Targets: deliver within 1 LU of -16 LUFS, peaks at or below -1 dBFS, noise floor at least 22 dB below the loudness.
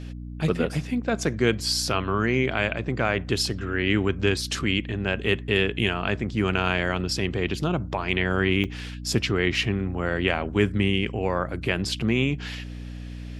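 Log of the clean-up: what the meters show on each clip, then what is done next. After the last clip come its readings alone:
dropouts 1; longest dropout 4.4 ms; hum 60 Hz; highest harmonic 300 Hz; hum level -33 dBFS; loudness -25.0 LUFS; peak level -6.0 dBFS; loudness target -16.0 LUFS
-> interpolate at 8.64 s, 4.4 ms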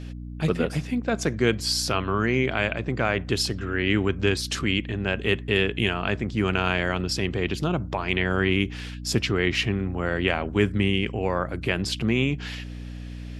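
dropouts 0; hum 60 Hz; highest harmonic 300 Hz; hum level -33 dBFS
-> de-hum 60 Hz, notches 5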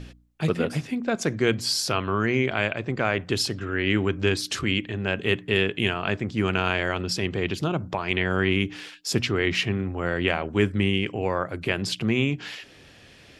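hum not found; loudness -25.5 LUFS; peak level -6.5 dBFS; loudness target -16.0 LUFS
-> trim +9.5 dB; peak limiter -1 dBFS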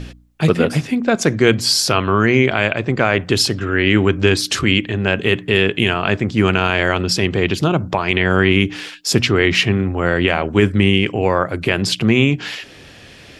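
loudness -16.5 LUFS; peak level -1.0 dBFS; noise floor -41 dBFS

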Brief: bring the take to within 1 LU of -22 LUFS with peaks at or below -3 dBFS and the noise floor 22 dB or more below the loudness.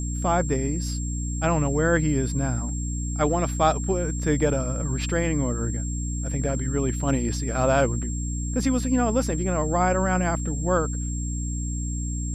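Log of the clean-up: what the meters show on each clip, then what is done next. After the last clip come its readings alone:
hum 60 Hz; highest harmonic 300 Hz; hum level -26 dBFS; steady tone 7.5 kHz; tone level -35 dBFS; loudness -25.0 LUFS; peak level -7.5 dBFS; loudness target -22.0 LUFS
-> de-hum 60 Hz, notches 5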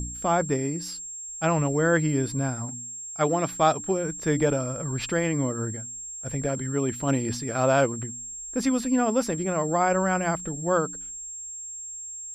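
hum not found; steady tone 7.5 kHz; tone level -35 dBFS
-> band-stop 7.5 kHz, Q 30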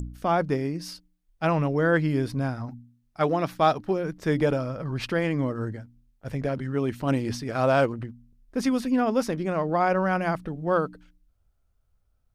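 steady tone not found; loudness -26.0 LUFS; peak level -9.0 dBFS; loudness target -22.0 LUFS
-> trim +4 dB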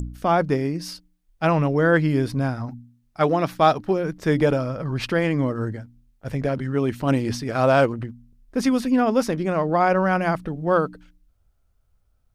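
loudness -22.0 LUFS; peak level -5.0 dBFS; noise floor -65 dBFS

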